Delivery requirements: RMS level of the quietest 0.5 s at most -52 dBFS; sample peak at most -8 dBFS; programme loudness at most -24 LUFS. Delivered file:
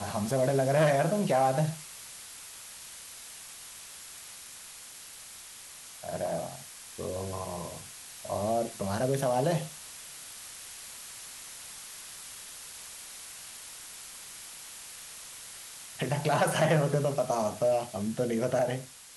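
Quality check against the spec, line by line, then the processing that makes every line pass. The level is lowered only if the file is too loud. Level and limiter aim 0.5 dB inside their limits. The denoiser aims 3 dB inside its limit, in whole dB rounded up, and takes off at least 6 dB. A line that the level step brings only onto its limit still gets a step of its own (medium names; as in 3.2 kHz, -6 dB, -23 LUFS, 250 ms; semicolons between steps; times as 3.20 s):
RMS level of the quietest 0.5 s -47 dBFS: fail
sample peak -14.0 dBFS: pass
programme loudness -31.5 LUFS: pass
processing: noise reduction 8 dB, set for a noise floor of -47 dBFS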